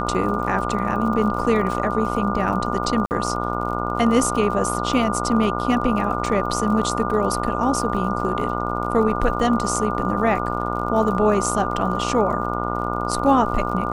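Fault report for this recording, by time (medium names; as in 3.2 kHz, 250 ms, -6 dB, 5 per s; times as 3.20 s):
buzz 60 Hz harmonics 24 -26 dBFS
crackle 43 per s -31 dBFS
whine 1.2 kHz -28 dBFS
3.06–3.11 s: dropout 49 ms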